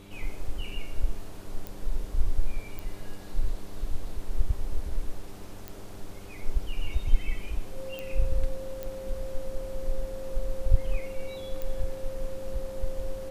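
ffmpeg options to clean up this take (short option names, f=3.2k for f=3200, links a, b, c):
-af "adeclick=t=4,bandreject=f=99.1:t=h:w=4,bandreject=f=198.2:t=h:w=4,bandreject=f=297.3:t=h:w=4,bandreject=f=396.4:t=h:w=4,bandreject=f=530:w=30"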